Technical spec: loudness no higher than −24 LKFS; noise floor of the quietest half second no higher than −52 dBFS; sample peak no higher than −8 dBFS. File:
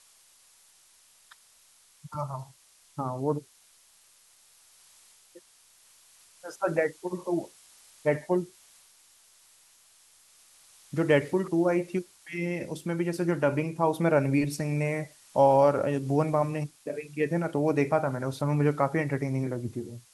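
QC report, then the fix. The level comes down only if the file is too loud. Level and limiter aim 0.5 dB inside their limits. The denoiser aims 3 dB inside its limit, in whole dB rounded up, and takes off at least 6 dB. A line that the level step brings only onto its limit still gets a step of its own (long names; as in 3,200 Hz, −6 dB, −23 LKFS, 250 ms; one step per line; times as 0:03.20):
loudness −28.0 LKFS: in spec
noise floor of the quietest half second −60 dBFS: in spec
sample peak −9.5 dBFS: in spec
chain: no processing needed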